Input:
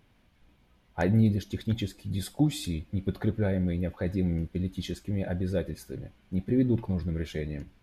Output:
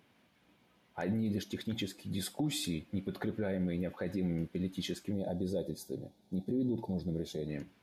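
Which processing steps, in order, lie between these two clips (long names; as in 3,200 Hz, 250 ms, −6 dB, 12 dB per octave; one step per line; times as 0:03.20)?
high-pass filter 180 Hz 12 dB per octave
brickwall limiter −25 dBFS, peak gain reduction 10.5 dB
gain on a spectral selection 0:05.13–0:07.48, 930–3,300 Hz −16 dB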